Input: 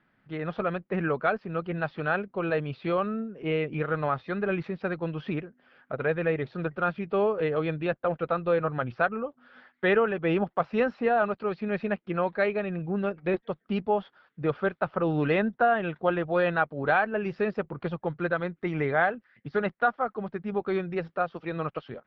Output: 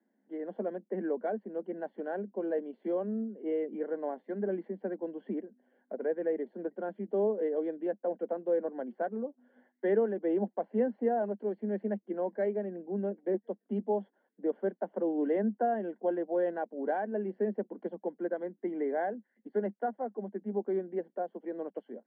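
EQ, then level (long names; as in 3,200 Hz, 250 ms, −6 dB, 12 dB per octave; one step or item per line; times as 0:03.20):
moving average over 35 samples
Butterworth high-pass 200 Hz 96 dB per octave
high-frequency loss of the air 190 metres
−1.0 dB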